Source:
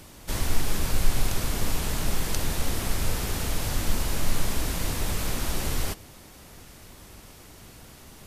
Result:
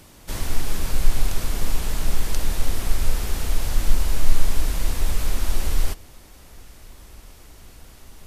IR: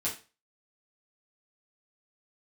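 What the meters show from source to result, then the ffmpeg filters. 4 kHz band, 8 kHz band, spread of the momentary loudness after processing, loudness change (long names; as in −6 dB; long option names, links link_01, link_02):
−1.0 dB, −1.0 dB, 21 LU, +1.5 dB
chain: -af "asubboost=boost=4:cutoff=59,volume=-1dB"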